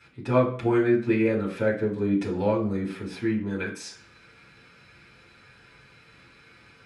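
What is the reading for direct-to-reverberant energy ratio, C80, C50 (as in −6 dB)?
−8.5 dB, 13.5 dB, 9.0 dB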